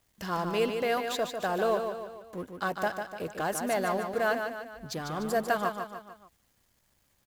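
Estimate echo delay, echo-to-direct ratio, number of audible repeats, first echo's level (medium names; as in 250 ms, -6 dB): 148 ms, -5.5 dB, 4, -6.5 dB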